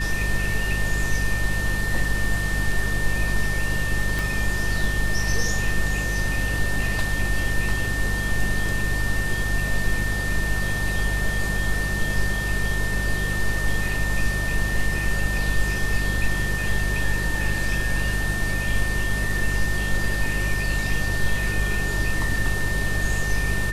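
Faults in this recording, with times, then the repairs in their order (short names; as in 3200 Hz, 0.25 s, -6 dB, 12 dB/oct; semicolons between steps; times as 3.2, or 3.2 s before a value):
hum 50 Hz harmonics 4 -27 dBFS
tone 1800 Hz -27 dBFS
4.19 pop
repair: de-click; de-hum 50 Hz, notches 4; notch 1800 Hz, Q 30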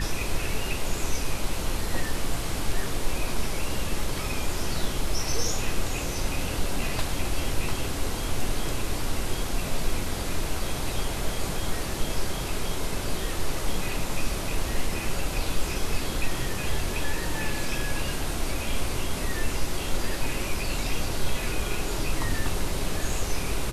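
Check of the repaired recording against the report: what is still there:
4.19 pop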